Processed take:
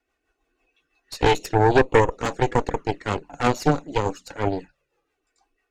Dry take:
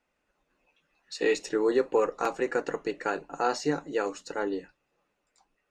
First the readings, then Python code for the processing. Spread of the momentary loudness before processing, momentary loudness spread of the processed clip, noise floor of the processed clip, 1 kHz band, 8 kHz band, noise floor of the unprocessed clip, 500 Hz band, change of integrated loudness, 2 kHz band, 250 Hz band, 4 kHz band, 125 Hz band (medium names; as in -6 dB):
8 LU, 11 LU, -78 dBFS, +9.5 dB, +4.0 dB, -78 dBFS, +5.0 dB, +6.5 dB, +7.0 dB, +6.5 dB, +8.0 dB, +21.5 dB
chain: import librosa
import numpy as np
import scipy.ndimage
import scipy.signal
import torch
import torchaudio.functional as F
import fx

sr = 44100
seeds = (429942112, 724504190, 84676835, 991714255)

y = fx.env_flanger(x, sr, rest_ms=2.7, full_db=-24.5)
y = fx.rotary(y, sr, hz=6.0)
y = fx.cheby_harmonics(y, sr, harmonics=(6,), levels_db=(-8,), full_scale_db=-14.0)
y = y * 10.0 ** (7.0 / 20.0)